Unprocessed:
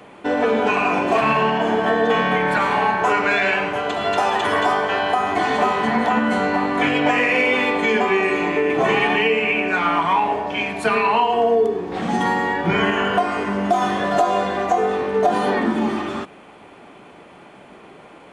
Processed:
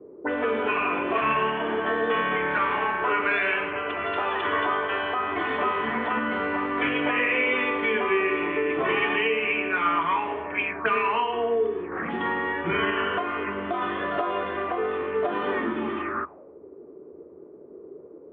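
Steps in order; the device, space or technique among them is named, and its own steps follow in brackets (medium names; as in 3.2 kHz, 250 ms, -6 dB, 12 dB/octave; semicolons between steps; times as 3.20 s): envelope filter bass rig (touch-sensitive low-pass 360–3300 Hz up, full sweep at -18.5 dBFS; cabinet simulation 75–2300 Hz, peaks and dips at 76 Hz +8 dB, 120 Hz -8 dB, 200 Hz -8 dB, 360 Hz +4 dB, 760 Hz -9 dB, 1.2 kHz +5 dB); trim -7 dB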